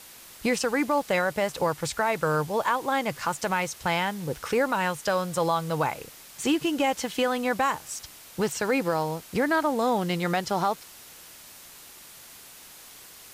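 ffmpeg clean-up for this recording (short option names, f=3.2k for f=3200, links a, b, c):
-af "afwtdn=0.005"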